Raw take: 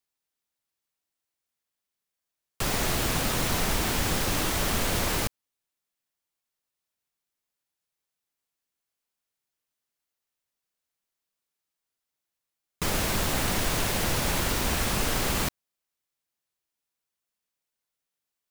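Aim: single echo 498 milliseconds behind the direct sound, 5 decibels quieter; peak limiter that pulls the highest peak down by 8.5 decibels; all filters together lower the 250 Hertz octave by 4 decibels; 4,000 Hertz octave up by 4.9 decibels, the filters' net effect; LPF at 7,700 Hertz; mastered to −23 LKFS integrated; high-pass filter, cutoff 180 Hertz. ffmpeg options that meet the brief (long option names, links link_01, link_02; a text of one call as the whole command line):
ffmpeg -i in.wav -af "highpass=180,lowpass=7700,equalizer=frequency=250:width_type=o:gain=-3.5,equalizer=frequency=4000:width_type=o:gain=6.5,alimiter=limit=-23dB:level=0:latency=1,aecho=1:1:498:0.562,volume=7dB" out.wav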